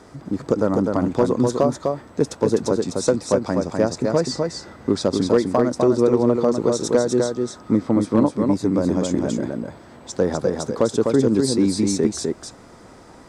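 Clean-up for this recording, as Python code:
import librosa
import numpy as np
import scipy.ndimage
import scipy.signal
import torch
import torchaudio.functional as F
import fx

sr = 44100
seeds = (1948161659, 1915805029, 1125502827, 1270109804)

y = fx.fix_declip(x, sr, threshold_db=-7.0)
y = fx.fix_echo_inverse(y, sr, delay_ms=252, level_db=-4.0)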